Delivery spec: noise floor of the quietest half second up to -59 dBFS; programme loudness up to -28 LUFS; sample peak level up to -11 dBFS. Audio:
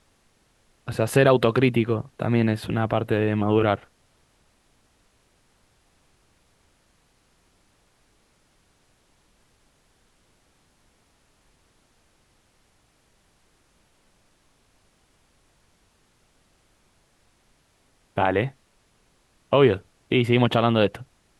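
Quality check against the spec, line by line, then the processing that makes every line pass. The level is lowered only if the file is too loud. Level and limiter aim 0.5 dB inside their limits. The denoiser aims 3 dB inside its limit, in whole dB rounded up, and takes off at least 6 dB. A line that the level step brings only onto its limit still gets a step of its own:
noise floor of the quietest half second -64 dBFS: pass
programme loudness -22.0 LUFS: fail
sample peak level -4.0 dBFS: fail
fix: trim -6.5 dB; peak limiter -11.5 dBFS

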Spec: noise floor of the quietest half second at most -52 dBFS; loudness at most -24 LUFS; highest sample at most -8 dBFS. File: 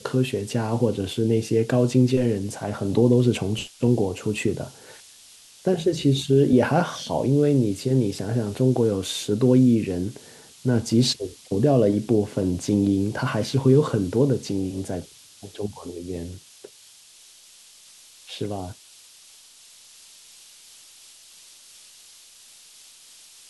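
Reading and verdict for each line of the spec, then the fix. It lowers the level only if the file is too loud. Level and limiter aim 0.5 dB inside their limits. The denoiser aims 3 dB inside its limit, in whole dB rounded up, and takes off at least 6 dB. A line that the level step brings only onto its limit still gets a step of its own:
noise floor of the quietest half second -51 dBFS: fail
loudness -22.5 LUFS: fail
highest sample -6.0 dBFS: fail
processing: trim -2 dB; peak limiter -8.5 dBFS

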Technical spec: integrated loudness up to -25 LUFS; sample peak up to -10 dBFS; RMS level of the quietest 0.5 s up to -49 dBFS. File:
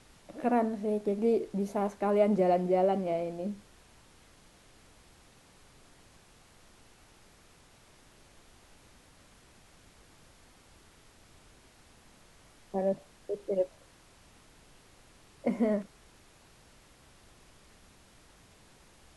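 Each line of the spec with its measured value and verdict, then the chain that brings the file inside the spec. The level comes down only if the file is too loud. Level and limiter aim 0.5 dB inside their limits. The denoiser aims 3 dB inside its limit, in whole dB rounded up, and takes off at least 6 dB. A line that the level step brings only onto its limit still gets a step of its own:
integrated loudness -30.5 LUFS: pass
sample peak -14.0 dBFS: pass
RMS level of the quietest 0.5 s -59 dBFS: pass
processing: none needed

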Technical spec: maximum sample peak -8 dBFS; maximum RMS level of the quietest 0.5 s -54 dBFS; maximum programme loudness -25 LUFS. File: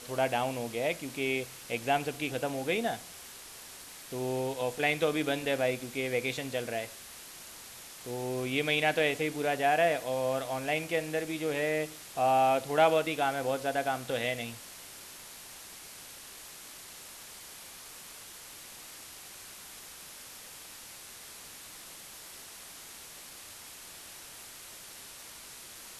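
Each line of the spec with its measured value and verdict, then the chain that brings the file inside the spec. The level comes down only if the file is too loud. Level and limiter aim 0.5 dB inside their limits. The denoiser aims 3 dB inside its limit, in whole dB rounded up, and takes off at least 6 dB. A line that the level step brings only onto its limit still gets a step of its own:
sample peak -11.5 dBFS: pass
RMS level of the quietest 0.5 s -48 dBFS: fail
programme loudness -30.5 LUFS: pass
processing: noise reduction 9 dB, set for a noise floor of -48 dBFS

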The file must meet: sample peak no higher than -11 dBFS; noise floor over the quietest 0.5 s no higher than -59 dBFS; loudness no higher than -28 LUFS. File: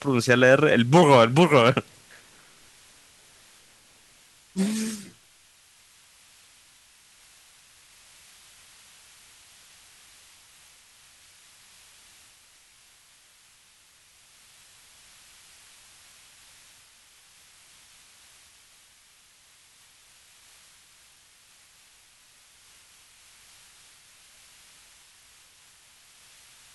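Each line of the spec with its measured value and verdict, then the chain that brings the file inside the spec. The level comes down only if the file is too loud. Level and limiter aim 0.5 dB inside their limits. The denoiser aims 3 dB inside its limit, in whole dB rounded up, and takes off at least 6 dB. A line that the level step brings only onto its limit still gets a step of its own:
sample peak -4.0 dBFS: fail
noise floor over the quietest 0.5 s -58 dBFS: fail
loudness -19.5 LUFS: fail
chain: trim -9 dB

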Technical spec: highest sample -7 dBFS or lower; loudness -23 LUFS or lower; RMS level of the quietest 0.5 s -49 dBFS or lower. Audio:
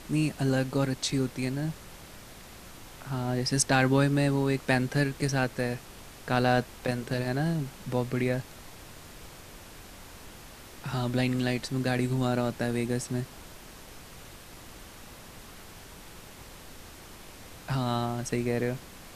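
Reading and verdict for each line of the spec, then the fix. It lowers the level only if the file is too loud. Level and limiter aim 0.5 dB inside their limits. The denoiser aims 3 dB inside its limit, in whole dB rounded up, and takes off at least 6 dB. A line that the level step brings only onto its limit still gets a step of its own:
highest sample -9.5 dBFS: pass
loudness -29.0 LUFS: pass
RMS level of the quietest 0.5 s -47 dBFS: fail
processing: noise reduction 6 dB, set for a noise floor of -47 dBFS

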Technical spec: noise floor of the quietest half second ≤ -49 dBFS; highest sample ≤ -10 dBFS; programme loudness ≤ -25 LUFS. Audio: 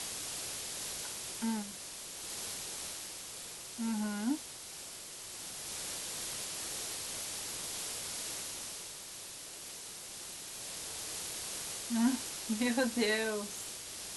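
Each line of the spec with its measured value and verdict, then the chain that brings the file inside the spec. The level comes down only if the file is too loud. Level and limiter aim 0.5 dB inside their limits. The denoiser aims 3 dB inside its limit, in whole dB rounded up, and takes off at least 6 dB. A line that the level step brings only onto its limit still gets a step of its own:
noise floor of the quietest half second -47 dBFS: fail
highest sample -18.5 dBFS: pass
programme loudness -37.5 LUFS: pass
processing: noise reduction 6 dB, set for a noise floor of -47 dBFS

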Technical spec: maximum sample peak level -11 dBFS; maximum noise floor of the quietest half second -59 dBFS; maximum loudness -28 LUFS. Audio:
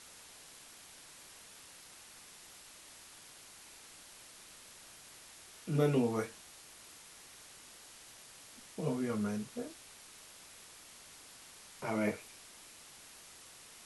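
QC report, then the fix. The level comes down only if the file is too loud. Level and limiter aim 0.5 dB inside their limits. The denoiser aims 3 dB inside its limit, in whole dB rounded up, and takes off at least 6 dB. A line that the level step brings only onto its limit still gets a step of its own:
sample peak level -19.5 dBFS: pass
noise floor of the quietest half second -55 dBFS: fail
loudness -36.0 LUFS: pass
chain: noise reduction 7 dB, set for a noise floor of -55 dBFS

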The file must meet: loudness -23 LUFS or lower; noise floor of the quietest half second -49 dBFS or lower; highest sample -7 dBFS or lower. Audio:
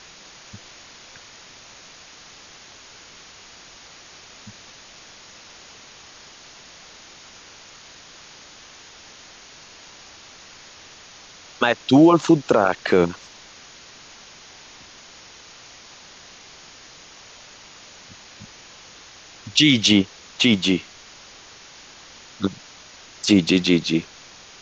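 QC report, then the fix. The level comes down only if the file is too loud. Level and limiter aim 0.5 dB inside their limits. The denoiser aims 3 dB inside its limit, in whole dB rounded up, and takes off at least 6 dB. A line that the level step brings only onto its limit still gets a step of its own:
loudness -18.5 LUFS: fail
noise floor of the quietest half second -45 dBFS: fail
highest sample -4.0 dBFS: fail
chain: trim -5 dB

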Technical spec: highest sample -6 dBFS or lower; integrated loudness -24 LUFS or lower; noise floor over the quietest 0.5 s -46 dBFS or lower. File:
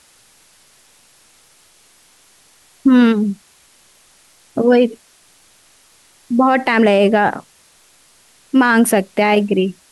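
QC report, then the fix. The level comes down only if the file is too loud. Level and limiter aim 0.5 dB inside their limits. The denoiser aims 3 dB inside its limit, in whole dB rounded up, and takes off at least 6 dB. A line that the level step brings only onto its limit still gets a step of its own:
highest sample -4.0 dBFS: fail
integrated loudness -14.5 LUFS: fail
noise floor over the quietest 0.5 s -52 dBFS: pass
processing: trim -10 dB

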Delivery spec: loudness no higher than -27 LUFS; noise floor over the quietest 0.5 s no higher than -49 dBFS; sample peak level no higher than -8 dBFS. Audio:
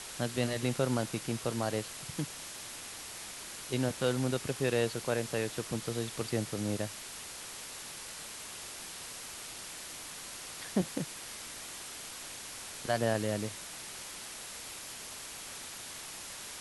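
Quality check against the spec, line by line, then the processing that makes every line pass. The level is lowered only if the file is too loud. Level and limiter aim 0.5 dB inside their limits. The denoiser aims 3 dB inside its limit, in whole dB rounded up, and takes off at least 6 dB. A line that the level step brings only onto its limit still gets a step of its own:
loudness -36.5 LUFS: pass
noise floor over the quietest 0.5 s -45 dBFS: fail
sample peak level -16.0 dBFS: pass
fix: noise reduction 7 dB, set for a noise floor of -45 dBFS

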